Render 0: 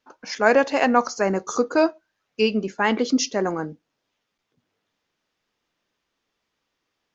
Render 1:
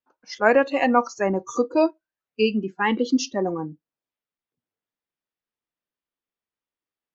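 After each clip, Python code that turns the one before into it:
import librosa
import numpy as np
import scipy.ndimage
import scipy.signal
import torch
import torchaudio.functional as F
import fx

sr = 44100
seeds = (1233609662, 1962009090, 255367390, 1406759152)

y = fx.noise_reduce_blind(x, sr, reduce_db=17)
y = fx.high_shelf(y, sr, hz=6000.0, db=-10.0)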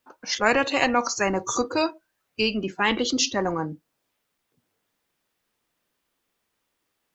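y = fx.spectral_comp(x, sr, ratio=2.0)
y = y * 10.0 ** (-2.0 / 20.0)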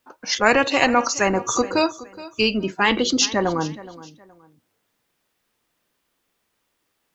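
y = fx.echo_feedback(x, sr, ms=420, feedback_pct=28, wet_db=-18.0)
y = y * 10.0 ** (4.0 / 20.0)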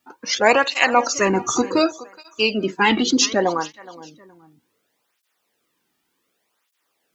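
y = fx.flanger_cancel(x, sr, hz=0.67, depth_ms=2.0)
y = y * 10.0 ** (4.0 / 20.0)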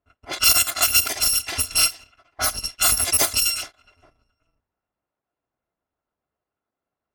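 y = fx.bit_reversed(x, sr, seeds[0], block=256)
y = fx.env_lowpass(y, sr, base_hz=960.0, full_db=-14.0)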